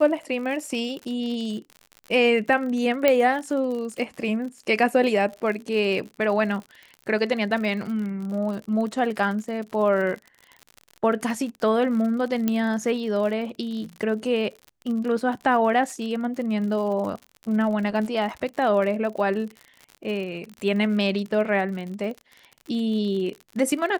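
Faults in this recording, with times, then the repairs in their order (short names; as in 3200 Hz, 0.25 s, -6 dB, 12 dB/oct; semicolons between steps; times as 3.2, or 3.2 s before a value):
crackle 59/s -32 dBFS
3.08 pop -6 dBFS
12.48 pop -10 dBFS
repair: de-click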